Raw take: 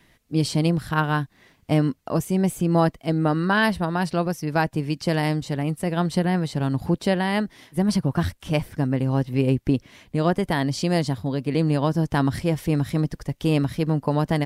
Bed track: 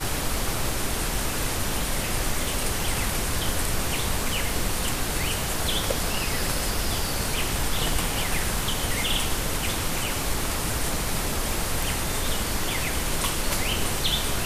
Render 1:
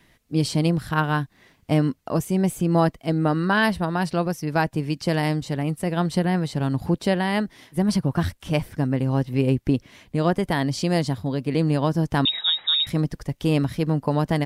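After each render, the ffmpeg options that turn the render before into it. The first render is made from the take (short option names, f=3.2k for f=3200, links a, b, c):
-filter_complex "[0:a]asettb=1/sr,asplit=3[a][b][c];[a]atrim=end=12.254[d];[b]atrim=start=12.25:end=12.87,asetpts=PTS-STARTPTS,afade=t=in:d=0.004:c=qsin,afade=t=out:st=0.616:d=0.004:c=qsin,lowpass=f=3.3k:t=q:w=0.5098,lowpass=f=3.3k:t=q:w=0.6013,lowpass=f=3.3k:t=q:w=0.9,lowpass=f=3.3k:t=q:w=2.563,afreqshift=-3900[e];[c]atrim=start=12.866[f];[d][e]acrossfade=d=0.004:c1=hsin:c2=qsin[g];[g][f]acrossfade=d=0.004:c1=qsin:c2=hsin"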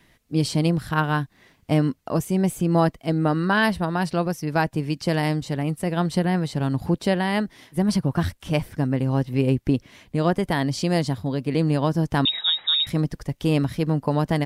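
-af anull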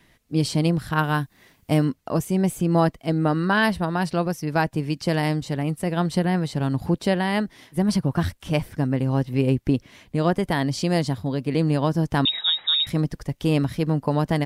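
-filter_complex "[0:a]asettb=1/sr,asplit=3[a][b][c];[a]atrim=end=0.994[d];[b]atrim=start=0.99:end=1.85,asetpts=PTS-STARTPTS,afade=t=in:d=0.004:c=qsin,afade=t=out:st=0.856:d=0.004:c=qsin,highshelf=f=9.1k:g=11.5[e];[c]atrim=start=1.846[f];[d][e]acrossfade=d=0.004:c1=hsin:c2=qsin[g];[g][f]acrossfade=d=0.004:c1=qsin:c2=hsin"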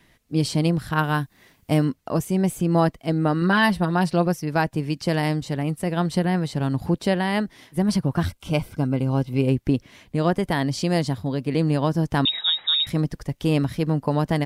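-filter_complex "[0:a]asettb=1/sr,asplit=3[a][b][c];[a]atrim=end=3.414[d];[b]atrim=start=3.41:end=4.39,asetpts=PTS-STARTPTS,afade=t=in:d=0.004:c=qsin,afade=t=out:st=0.976:d=0.004:c=qsin,aecho=1:1:5.6:0.52,atrim=end_sample=43218[e];[c]atrim=start=4.386[f];[d][e]acrossfade=d=0.004:c1=hsin:c2=qsin[g];[g][f]acrossfade=d=0.004:c1=qsin:c2=hsin,asettb=1/sr,asplit=3[h][i][j];[h]atrim=end=8.264[k];[i]atrim=start=8.26:end=9.47,asetpts=PTS-STARTPTS,afade=t=in:d=0.004:c=qsin,afade=t=out:st=1.206:d=0.004:c=qsin,asuperstop=centerf=1800:order=12:qfactor=5.5[l];[j]atrim=start=9.466[m];[k][l]acrossfade=d=0.004:c1=hsin:c2=qsin[n];[n][m]acrossfade=d=0.004:c1=qsin:c2=hsin"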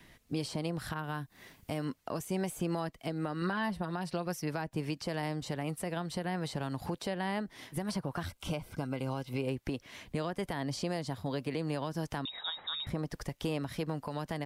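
-filter_complex "[0:a]acrossover=split=470|1400[a][b][c];[a]acompressor=threshold=-35dB:ratio=4[d];[b]acompressor=threshold=-34dB:ratio=4[e];[c]acompressor=threshold=-41dB:ratio=4[f];[d][e][f]amix=inputs=3:normalize=0,alimiter=limit=-23.5dB:level=0:latency=1:release=207"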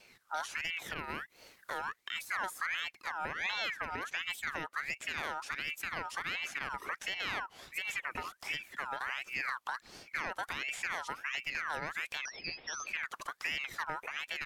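-af "aeval=exprs='val(0)*sin(2*PI*1800*n/s+1800*0.4/1.4*sin(2*PI*1.4*n/s))':c=same"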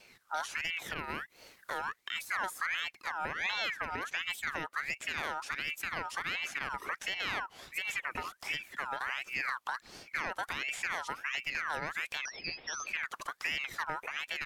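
-af "volume=1.5dB"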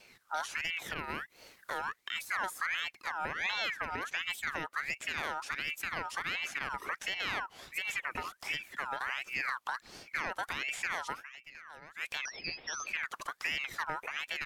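-filter_complex "[0:a]asplit=3[a][b][c];[a]atrim=end=11.48,asetpts=PTS-STARTPTS,afade=t=out:st=11.2:d=0.28:c=exp:silence=0.177828[d];[b]atrim=start=11.48:end=11.74,asetpts=PTS-STARTPTS,volume=-15dB[e];[c]atrim=start=11.74,asetpts=PTS-STARTPTS,afade=t=in:d=0.28:c=exp:silence=0.177828[f];[d][e][f]concat=n=3:v=0:a=1"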